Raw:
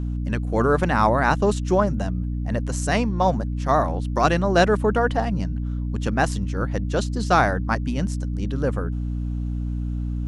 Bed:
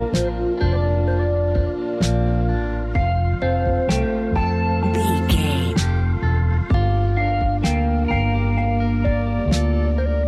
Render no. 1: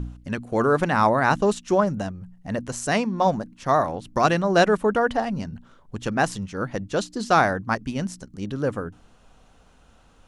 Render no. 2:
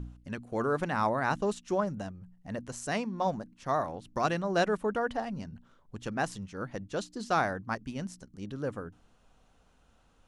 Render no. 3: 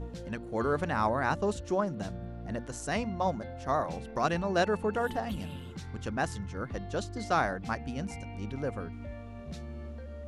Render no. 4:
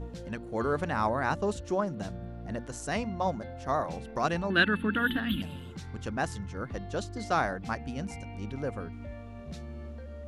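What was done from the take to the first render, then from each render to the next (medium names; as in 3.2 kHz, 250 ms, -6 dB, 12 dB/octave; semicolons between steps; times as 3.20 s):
de-hum 60 Hz, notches 5
trim -9.5 dB
add bed -23 dB
4.50–5.42 s: FFT filter 150 Hz 0 dB, 280 Hz +11 dB, 430 Hz -6 dB, 790 Hz -12 dB, 1.6 kHz +12 dB, 2.2 kHz +4 dB, 3.5 kHz +15 dB, 5.8 kHz -23 dB, 13 kHz +11 dB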